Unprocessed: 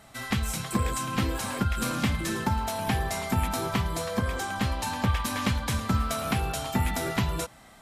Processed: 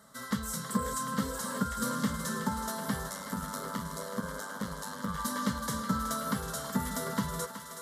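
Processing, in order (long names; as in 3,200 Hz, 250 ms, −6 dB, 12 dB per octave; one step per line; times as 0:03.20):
0:03.06–0:05.18: amplitude modulation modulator 100 Hz, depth 95%
high-pass filter 85 Hz 12 dB per octave
phaser with its sweep stopped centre 500 Hz, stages 8
feedback echo with a high-pass in the loop 373 ms, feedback 76%, high-pass 430 Hz, level −9 dB
level −1.5 dB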